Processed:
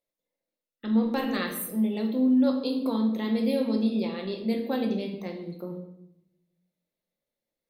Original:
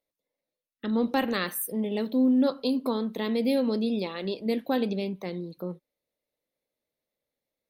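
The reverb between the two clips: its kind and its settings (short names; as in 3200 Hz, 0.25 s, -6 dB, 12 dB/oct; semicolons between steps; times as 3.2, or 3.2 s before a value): shoebox room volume 240 m³, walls mixed, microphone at 0.88 m; gain -4 dB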